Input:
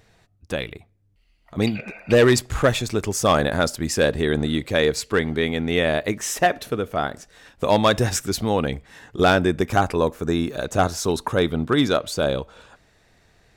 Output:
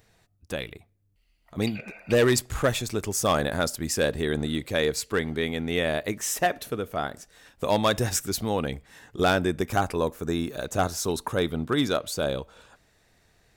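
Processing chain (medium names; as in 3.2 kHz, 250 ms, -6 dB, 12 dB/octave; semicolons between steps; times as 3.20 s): treble shelf 9 kHz +10.5 dB; trim -5.5 dB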